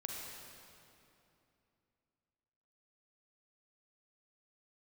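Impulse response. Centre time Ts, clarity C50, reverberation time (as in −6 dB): 132 ms, −1.0 dB, 2.8 s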